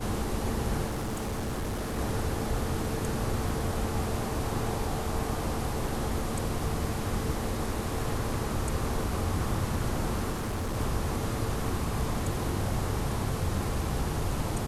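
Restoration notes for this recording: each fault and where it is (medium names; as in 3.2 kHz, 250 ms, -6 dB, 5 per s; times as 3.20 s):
0.86–1.99 s: clipped -28.5 dBFS
3.49 s: dropout 3.1 ms
10.32–10.77 s: clipped -28 dBFS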